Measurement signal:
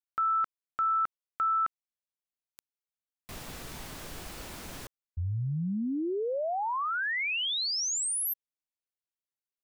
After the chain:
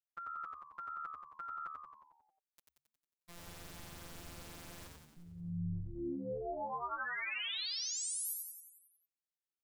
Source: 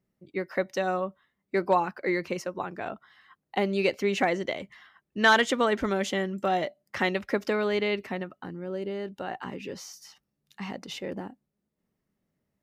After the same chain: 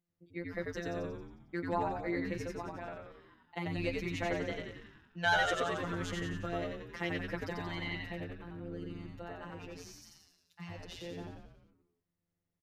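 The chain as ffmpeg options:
-filter_complex "[0:a]afftfilt=real='hypot(re,im)*cos(PI*b)':imag='0':win_size=1024:overlap=0.75,asplit=9[a][b][c][d][e][f][g][h][i];[b]adelay=90,afreqshift=-75,volume=-3dB[j];[c]adelay=180,afreqshift=-150,volume=-7.9dB[k];[d]adelay=270,afreqshift=-225,volume=-12.8dB[l];[e]adelay=360,afreqshift=-300,volume=-17.6dB[m];[f]adelay=450,afreqshift=-375,volume=-22.5dB[n];[g]adelay=540,afreqshift=-450,volume=-27.4dB[o];[h]adelay=630,afreqshift=-525,volume=-32.3dB[p];[i]adelay=720,afreqshift=-600,volume=-37.2dB[q];[a][j][k][l][m][n][o][p][q]amix=inputs=9:normalize=0,volume=-7.5dB"

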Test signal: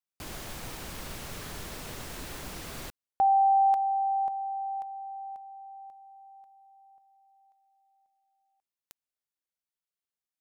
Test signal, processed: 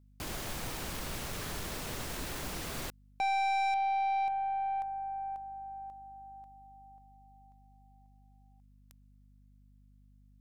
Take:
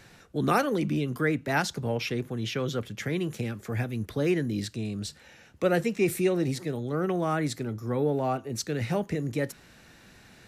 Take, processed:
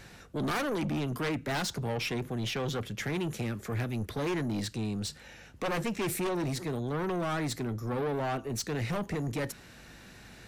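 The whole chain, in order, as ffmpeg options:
-af "aeval=exprs='0.282*(cos(1*acos(clip(val(0)/0.282,-1,1)))-cos(1*PI/2))+0.112*(cos(4*acos(clip(val(0)/0.282,-1,1)))-cos(4*PI/2))+0.0794*(cos(5*acos(clip(val(0)/0.282,-1,1)))-cos(5*PI/2))':c=same,aeval=exprs='val(0)+0.002*(sin(2*PI*50*n/s)+sin(2*PI*2*50*n/s)/2+sin(2*PI*3*50*n/s)/3+sin(2*PI*4*50*n/s)/4+sin(2*PI*5*50*n/s)/5)':c=same,asoftclip=type=tanh:threshold=-22dB,volume=-5.5dB"

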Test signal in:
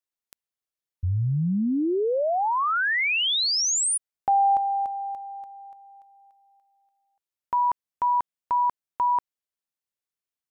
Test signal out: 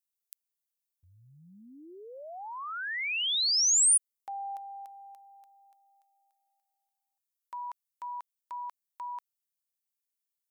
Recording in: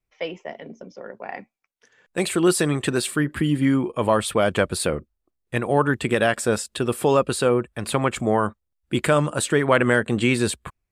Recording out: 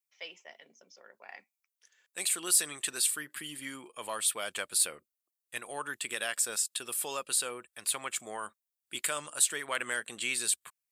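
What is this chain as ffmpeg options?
-af "aderivative,acontrast=68,volume=-5.5dB"

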